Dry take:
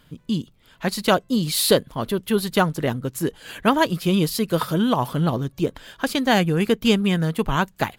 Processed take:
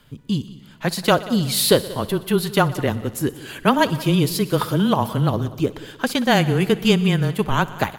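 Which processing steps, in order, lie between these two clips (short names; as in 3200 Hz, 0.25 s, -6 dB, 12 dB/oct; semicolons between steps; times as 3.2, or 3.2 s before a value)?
frequency shift -19 Hz; multi-head echo 61 ms, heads all three, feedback 49%, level -21.5 dB; gain +1.5 dB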